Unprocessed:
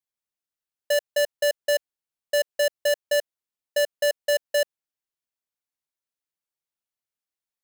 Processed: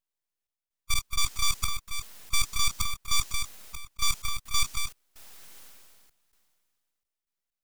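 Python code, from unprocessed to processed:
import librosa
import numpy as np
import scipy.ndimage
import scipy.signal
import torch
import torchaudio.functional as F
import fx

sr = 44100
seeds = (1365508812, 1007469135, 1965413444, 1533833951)

p1 = fx.spec_quant(x, sr, step_db=15)
p2 = scipy.signal.sosfilt(scipy.signal.butter(2, 100.0, 'highpass', fs=sr, output='sos'), p1)
p3 = p2 + 10.0 ** (-9.5 / 20.0) * np.pad(p2, (int(227 * sr / 1000.0), 0))[:len(p2)]
p4 = fx.rider(p3, sr, range_db=5, speed_s=0.5)
p5 = p3 + (p4 * 10.0 ** (-2.0 / 20.0))
p6 = fx.peak_eq(p5, sr, hz=600.0, db=-6.0, octaves=2.6)
p7 = np.abs(p6)
p8 = fx.step_gate(p7, sr, bpm=64, pattern='xx.x.xx.xxxx.x', floor_db=-24.0, edge_ms=4.5)
p9 = fx.dynamic_eq(p8, sr, hz=6000.0, q=0.86, threshold_db=-44.0, ratio=4.0, max_db=6)
y = fx.sustainer(p9, sr, db_per_s=27.0)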